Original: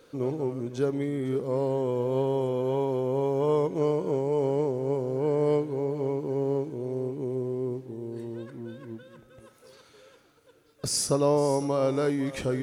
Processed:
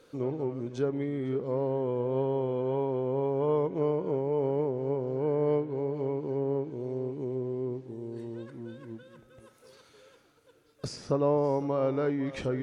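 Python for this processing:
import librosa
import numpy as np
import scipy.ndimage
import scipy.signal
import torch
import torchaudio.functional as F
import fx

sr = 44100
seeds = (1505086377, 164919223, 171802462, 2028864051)

y = fx.env_lowpass_down(x, sr, base_hz=2400.0, full_db=-23.5)
y = fx.high_shelf(y, sr, hz=4600.0, db=-6.5, at=(10.87, 11.44))
y = F.gain(torch.from_numpy(y), -2.5).numpy()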